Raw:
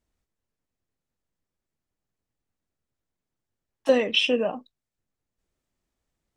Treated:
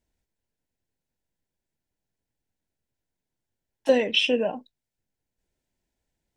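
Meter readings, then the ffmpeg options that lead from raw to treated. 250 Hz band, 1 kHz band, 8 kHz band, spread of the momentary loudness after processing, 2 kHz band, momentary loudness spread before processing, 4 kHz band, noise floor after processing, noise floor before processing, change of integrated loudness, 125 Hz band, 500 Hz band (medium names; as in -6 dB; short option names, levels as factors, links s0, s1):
0.0 dB, -0.5 dB, 0.0 dB, 10 LU, 0.0 dB, 10 LU, 0.0 dB, under -85 dBFS, under -85 dBFS, 0.0 dB, no reading, 0.0 dB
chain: -af "asuperstop=centerf=1200:order=4:qfactor=4"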